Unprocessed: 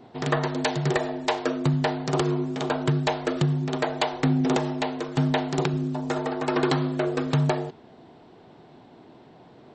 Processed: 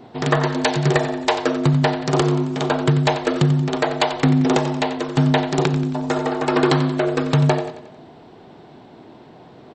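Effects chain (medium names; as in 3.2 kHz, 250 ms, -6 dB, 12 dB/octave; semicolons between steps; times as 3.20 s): on a send: feedback delay 90 ms, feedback 50%, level -12 dB; on the sum: trim +6 dB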